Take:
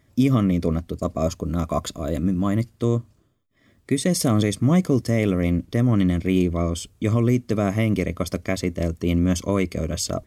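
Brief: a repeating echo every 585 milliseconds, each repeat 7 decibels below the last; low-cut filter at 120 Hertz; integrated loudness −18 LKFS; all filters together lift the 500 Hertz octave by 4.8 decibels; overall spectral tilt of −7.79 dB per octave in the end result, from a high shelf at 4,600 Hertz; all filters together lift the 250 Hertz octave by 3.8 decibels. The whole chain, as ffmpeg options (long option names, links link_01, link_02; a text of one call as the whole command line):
ffmpeg -i in.wav -af "highpass=120,equalizer=frequency=250:width_type=o:gain=4,equalizer=frequency=500:width_type=o:gain=5,highshelf=frequency=4600:gain=-6,aecho=1:1:585|1170|1755|2340|2925:0.447|0.201|0.0905|0.0407|0.0183,volume=1dB" out.wav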